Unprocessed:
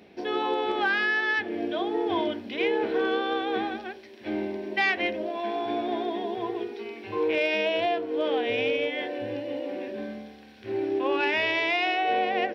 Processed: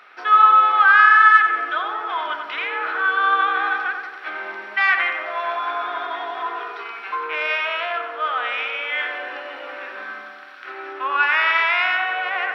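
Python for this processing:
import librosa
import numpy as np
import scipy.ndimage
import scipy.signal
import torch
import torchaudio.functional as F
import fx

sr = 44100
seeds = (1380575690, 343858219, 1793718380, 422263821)

p1 = fx.high_shelf(x, sr, hz=3100.0, db=-9.5)
p2 = fx.over_compress(p1, sr, threshold_db=-31.0, ratio=-1.0)
p3 = p1 + F.gain(torch.from_numpy(p2), 0.0).numpy()
p4 = fx.highpass_res(p3, sr, hz=1300.0, q=11.0)
p5 = fx.echo_filtered(p4, sr, ms=92, feedback_pct=70, hz=2400.0, wet_db=-5.0)
y = F.gain(torch.from_numpy(p5), 1.5).numpy()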